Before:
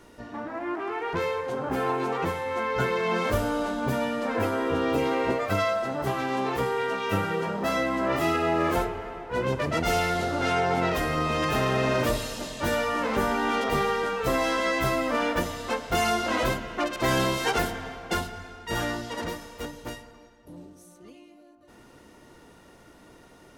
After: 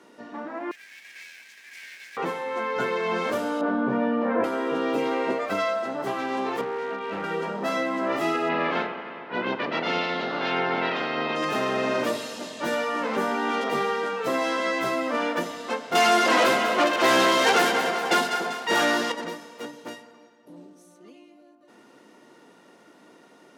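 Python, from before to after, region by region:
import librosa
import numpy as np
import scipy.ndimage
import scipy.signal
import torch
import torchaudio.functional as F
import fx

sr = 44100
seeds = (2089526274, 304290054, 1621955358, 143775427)

y = fx.chain(x, sr, fx.lower_of_two(delay_ms=3.1),
    fx.cheby_ripple_highpass(hz=1600.0, ripple_db=6),
    fx.quant_companded(bits=4), at=(0.71, 2.17))
y = fx.chain(y, sr, fx.lowpass(hz=1500.0, slope=12),
    fx.doubler(ms=21.0, db=-2),
    fx.env_flatten(amount_pct=50), at=(3.61, 4.44))
y = fx.chain(y, sr, fx.air_absorb(metres=380.0),
    fx.clip_hard(threshold_db=-26.0), at=(6.61, 7.24))
y = fx.spec_clip(y, sr, under_db=14, at=(8.48, 11.35), fade=0.02)
y = fx.lowpass(y, sr, hz=4000.0, slope=24, at=(8.48, 11.35), fade=0.02)
y = fx.chain(y, sr, fx.low_shelf(hz=220.0, db=-11.5),
    fx.echo_split(split_hz=1100.0, low_ms=287, high_ms=196, feedback_pct=52, wet_db=-11.0),
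    fx.leveller(passes=3), at=(15.95, 19.12))
y = scipy.signal.sosfilt(scipy.signal.butter(4, 190.0, 'highpass', fs=sr, output='sos'), y)
y = fx.high_shelf(y, sr, hz=11000.0, db=-11.5)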